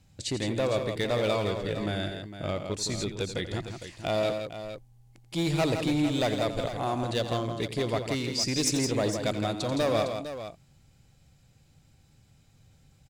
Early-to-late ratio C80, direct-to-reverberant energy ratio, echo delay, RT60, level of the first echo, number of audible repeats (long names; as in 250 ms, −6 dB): no reverb audible, no reverb audible, 87 ms, no reverb audible, −12.0 dB, 3